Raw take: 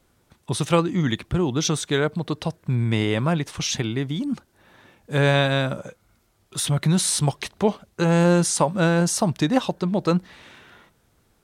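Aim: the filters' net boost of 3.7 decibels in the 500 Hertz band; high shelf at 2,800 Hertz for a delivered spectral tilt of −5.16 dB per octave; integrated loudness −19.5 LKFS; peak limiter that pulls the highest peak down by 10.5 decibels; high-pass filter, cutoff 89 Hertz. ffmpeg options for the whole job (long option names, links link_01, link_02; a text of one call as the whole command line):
ffmpeg -i in.wav -af "highpass=89,equalizer=frequency=500:width_type=o:gain=4.5,highshelf=frequency=2800:gain=-3.5,volume=6dB,alimiter=limit=-7.5dB:level=0:latency=1" out.wav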